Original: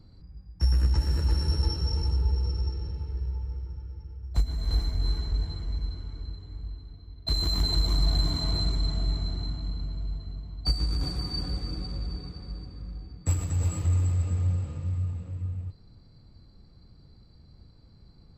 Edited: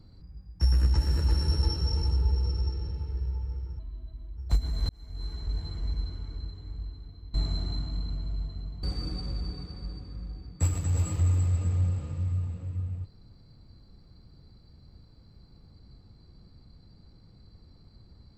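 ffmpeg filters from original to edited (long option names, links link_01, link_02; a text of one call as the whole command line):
ffmpeg -i in.wav -filter_complex "[0:a]asplit=6[link_01][link_02][link_03][link_04][link_05][link_06];[link_01]atrim=end=3.794[link_07];[link_02]atrim=start=3.79:end=4.22,asetpts=PTS-STARTPTS,asetrate=32634,aresample=44100[link_08];[link_03]atrim=start=4.216:end=4.74,asetpts=PTS-STARTPTS,afade=type=out:start_time=0.52:duration=0.004:curve=hsin[link_09];[link_04]atrim=start=4.74:end=7.192,asetpts=PTS-STARTPTS,afade=type=in:duration=0.97[link_10];[link_05]atrim=start=9.048:end=10.542[link_11];[link_06]atrim=start=11.488[link_12];[link_07][link_08]acrossfade=duration=0.004:curve1=hsin:curve2=hsin[link_13];[link_09][link_10]concat=n=2:v=0:a=1[link_14];[link_13][link_14]acrossfade=duration=0.004:curve1=hsin:curve2=hsin[link_15];[link_15][link_11]acrossfade=duration=0.004:curve1=hsin:curve2=hsin[link_16];[link_16][link_12]acrossfade=duration=0.004:curve1=hsin:curve2=hsin" out.wav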